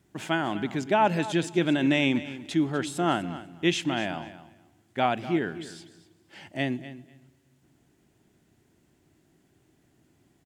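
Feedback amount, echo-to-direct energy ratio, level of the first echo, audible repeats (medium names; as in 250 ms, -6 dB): 16%, -15.0 dB, -15.0 dB, 2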